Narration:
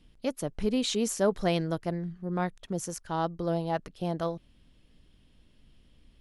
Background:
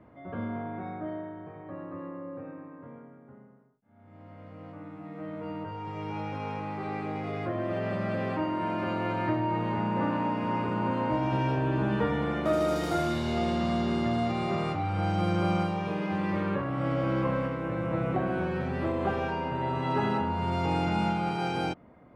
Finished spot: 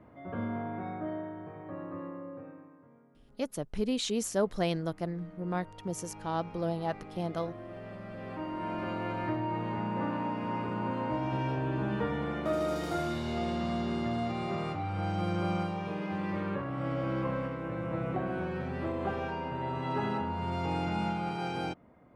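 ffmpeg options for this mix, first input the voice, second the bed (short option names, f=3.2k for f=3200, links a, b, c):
-filter_complex "[0:a]adelay=3150,volume=-3dB[a];[1:a]volume=8dB,afade=t=out:st=1.96:d=0.91:silence=0.237137,afade=t=in:st=8.14:d=0.59:silence=0.375837[b];[a][b]amix=inputs=2:normalize=0"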